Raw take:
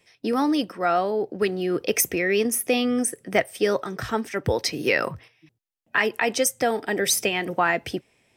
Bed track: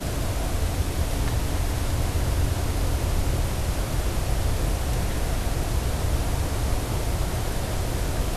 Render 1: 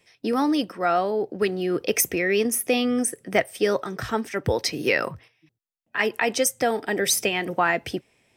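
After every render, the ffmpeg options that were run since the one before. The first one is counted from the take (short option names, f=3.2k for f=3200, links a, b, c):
-filter_complex "[0:a]asplit=2[a][b];[a]atrim=end=5.99,asetpts=PTS-STARTPTS,afade=t=out:st=4.91:d=1.08:c=qua:silence=0.421697[c];[b]atrim=start=5.99,asetpts=PTS-STARTPTS,afade=t=in:d=0.004:c=hsin:silence=0.421697[d];[c][d]concat=n=2:v=0:a=1"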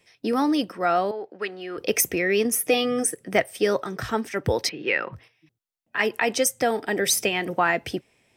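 -filter_complex "[0:a]asettb=1/sr,asplit=3[a][b][c];[a]atrim=end=1.114[d];[b]atrim=start=1.11:end=1.78,asetpts=PTS-STARTPTS,afade=t=in:d=0.004:c=qsin,afade=t=out:st=0.666:d=0.004:c=qsin,bandpass=f=1.6k:t=q:w=0.7[e];[c]atrim=start=1.776[f];[d][e]acrossfade=d=0.004:c1=hsin:c2=qsin[g];[g][f]acrossfade=d=0.004:c1=qsin:c2=hsin,asettb=1/sr,asplit=3[h][i][j];[h]atrim=end=2.514[k];[i]atrim=start=2.51:end=3.15,asetpts=PTS-STARTPTS,afade=t=in:d=0.004:c=qsin,afade=t=out:st=0.636:d=0.004:c=qsin,aecho=1:1:6.5:0.65,atrim=end_sample=28224[l];[j]atrim=start=3.146[m];[k][l]acrossfade=d=0.004:c1=hsin:c2=qsin[n];[n][m]acrossfade=d=0.004:c1=qsin:c2=hsin,asettb=1/sr,asplit=3[o][p][q];[o]atrim=end=4.694[r];[p]atrim=start=4.69:end=5.13,asetpts=PTS-STARTPTS,afade=t=in:d=0.004:c=qsin,afade=t=out:st=0.436:d=0.004:c=qsin,highpass=230,equalizer=f=260:t=q:w=4:g=-9,equalizer=f=440:t=q:w=4:g=-4,equalizer=f=650:t=q:w=4:g=-9,equalizer=f=1.1k:t=q:w=4:g=-5,lowpass=f=3.2k:w=0.5412,lowpass=f=3.2k:w=1.3066[s];[q]atrim=start=5.126[t];[r][s]acrossfade=d=0.004:c1=hsin:c2=qsin[u];[u][t]acrossfade=d=0.004:c1=qsin:c2=hsin"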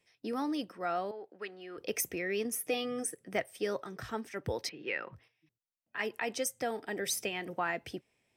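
-af "volume=-12dB"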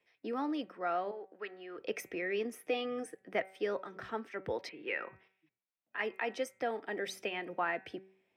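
-filter_complex "[0:a]acrossover=split=220 3600:gain=0.251 1 0.126[a][b][c];[a][b][c]amix=inputs=3:normalize=0,bandreject=f=190.5:t=h:w=4,bandreject=f=381:t=h:w=4,bandreject=f=571.5:t=h:w=4,bandreject=f=762:t=h:w=4,bandreject=f=952.5:t=h:w=4,bandreject=f=1.143k:t=h:w=4,bandreject=f=1.3335k:t=h:w=4,bandreject=f=1.524k:t=h:w=4,bandreject=f=1.7145k:t=h:w=4,bandreject=f=1.905k:t=h:w=4,bandreject=f=2.0955k:t=h:w=4,bandreject=f=2.286k:t=h:w=4,bandreject=f=2.4765k:t=h:w=4,bandreject=f=2.667k:t=h:w=4"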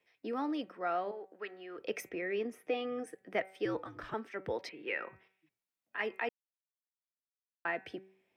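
-filter_complex "[0:a]asettb=1/sr,asplit=3[a][b][c];[a]atrim=end=2.094[d];[b]atrim=start=2.09:end=3.07,asetpts=PTS-STARTPTS,afade=t=in:d=0.004:c=qsin,afade=t=out:st=0.976:d=0.004:c=qsin,highshelf=f=4k:g=-10[e];[c]atrim=start=3.066[f];[d][e]acrossfade=d=0.004:c1=hsin:c2=qsin[g];[g][f]acrossfade=d=0.004:c1=qsin:c2=hsin,asettb=1/sr,asplit=3[h][i][j];[h]atrim=end=3.654[k];[i]atrim=start=3.65:end=4.14,asetpts=PTS-STARTPTS,afade=t=in:d=0.004:c=qsin,afade=t=out:st=0.486:d=0.004:c=qsin,afreqshift=-77[l];[j]atrim=start=4.136[m];[k][l]acrossfade=d=0.004:c1=hsin:c2=qsin[n];[n][m]acrossfade=d=0.004:c1=qsin:c2=hsin,asplit=3[o][p][q];[o]atrim=end=6.29,asetpts=PTS-STARTPTS,afade=t=out:st=6.286:d=0.004:c=hsin[r];[p]atrim=start=6.29:end=7.65,asetpts=PTS-STARTPTS,volume=0[s];[q]atrim=start=7.65,asetpts=PTS-STARTPTS,afade=t=in:d=0.004:c=hsin[t];[r][s][t]concat=n=3:v=0:a=1"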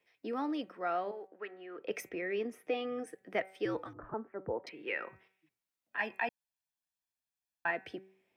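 -filter_complex "[0:a]asettb=1/sr,asplit=3[a][b][c];[a]atrim=end=1.274[d];[b]atrim=start=1.27:end=1.91,asetpts=PTS-STARTPTS,afade=t=in:d=0.004:c=qsin,afade=t=out:st=0.636:d=0.004:c=qsin,highpass=160,lowpass=2.6k[e];[c]atrim=start=1.906[f];[d][e]acrossfade=d=0.004:c1=hsin:c2=qsin[g];[g][f]acrossfade=d=0.004:c1=qsin:c2=hsin,asettb=1/sr,asplit=3[h][i][j];[h]atrim=end=3.934[k];[i]atrim=start=3.93:end=4.67,asetpts=PTS-STARTPTS,afade=t=in:d=0.004:c=qsin,afade=t=out:st=0.736:d=0.004:c=qsin,lowpass=f=1.2k:w=0.5412,lowpass=f=1.2k:w=1.3066[l];[j]atrim=start=4.666[m];[k][l]acrossfade=d=0.004:c1=hsin:c2=qsin[n];[n][m]acrossfade=d=0.004:c1=qsin:c2=hsin,asettb=1/sr,asplit=3[o][p][q];[o]atrim=end=5.974[r];[p]atrim=start=5.97:end=7.71,asetpts=PTS-STARTPTS,afade=t=in:d=0.004:c=qsin,afade=t=out:st=1.736:d=0.004:c=qsin,aecho=1:1:1.2:0.65,atrim=end_sample=76734[s];[q]atrim=start=7.706[t];[r][s]acrossfade=d=0.004:c1=hsin:c2=qsin[u];[u][t]acrossfade=d=0.004:c1=qsin:c2=hsin"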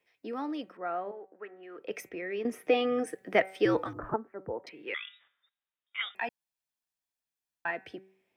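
-filter_complex "[0:a]asettb=1/sr,asplit=3[a][b][c];[a]atrim=end=0.774[d];[b]atrim=start=0.77:end=1.63,asetpts=PTS-STARTPTS,afade=t=in:d=0.004:c=qsin,afade=t=out:st=0.856:d=0.004:c=qsin,lowpass=1.9k[e];[c]atrim=start=1.626[f];[d][e]acrossfade=d=0.004:c1=hsin:c2=qsin[g];[g][f]acrossfade=d=0.004:c1=qsin:c2=hsin,asettb=1/sr,asplit=3[h][i][j];[h]atrim=end=4.944[k];[i]atrim=start=4.94:end=6.15,asetpts=PTS-STARTPTS,afade=t=in:d=0.004:c=qsin,afade=t=out:st=1.206:d=0.004:c=qsin,lowpass=f=3.3k:t=q:w=0.5098,lowpass=f=3.3k:t=q:w=0.6013,lowpass=f=3.3k:t=q:w=0.9,lowpass=f=3.3k:t=q:w=2.563,afreqshift=-3900[l];[j]atrim=start=6.146[m];[k][l]acrossfade=d=0.004:c1=hsin:c2=qsin[n];[n][m]acrossfade=d=0.004:c1=qsin:c2=hsin,asplit=3[o][p][q];[o]atrim=end=2.452[r];[p]atrim=start=2.448:end=4.162,asetpts=PTS-STARTPTS,volume=9dB[s];[q]atrim=start=4.158[t];[r][s]acrossfade=d=0.004:c1=hsin:c2=hsin[u];[u][t]acrossfade=d=0.004:c1=hsin:c2=hsin"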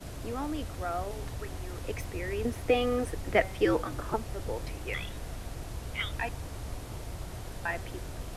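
-filter_complex "[1:a]volume=-14dB[a];[0:a][a]amix=inputs=2:normalize=0"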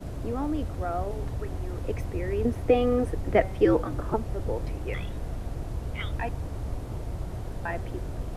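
-af "tiltshelf=f=1.2k:g=6.5"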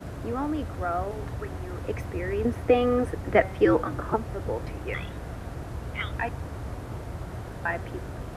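-af "highpass=64,equalizer=f=1.5k:t=o:w=1.3:g=7"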